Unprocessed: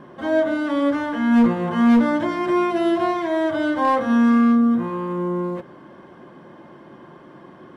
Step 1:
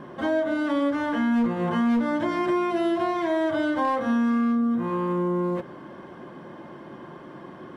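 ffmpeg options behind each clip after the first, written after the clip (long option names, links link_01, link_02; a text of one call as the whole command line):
ffmpeg -i in.wav -af "acompressor=threshold=-24dB:ratio=4,volume=2dB" out.wav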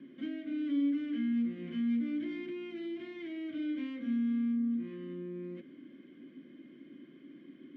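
ffmpeg -i in.wav -filter_complex "[0:a]acrossover=split=240[link_01][link_02];[link_02]asoftclip=type=tanh:threshold=-24dB[link_03];[link_01][link_03]amix=inputs=2:normalize=0,asplit=3[link_04][link_05][link_06];[link_04]bandpass=frequency=270:width_type=q:width=8,volume=0dB[link_07];[link_05]bandpass=frequency=2290:width_type=q:width=8,volume=-6dB[link_08];[link_06]bandpass=frequency=3010:width_type=q:width=8,volume=-9dB[link_09];[link_07][link_08][link_09]amix=inputs=3:normalize=0" out.wav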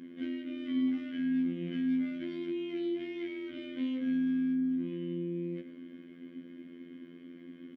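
ffmpeg -i in.wav -filter_complex "[0:a]afftfilt=real='hypot(re,im)*cos(PI*b)':imag='0':win_size=2048:overlap=0.75,asplit=2[link_01][link_02];[link_02]adelay=110,highpass=300,lowpass=3400,asoftclip=type=hard:threshold=-38dB,volume=-12dB[link_03];[link_01][link_03]amix=inputs=2:normalize=0,volume=7dB" out.wav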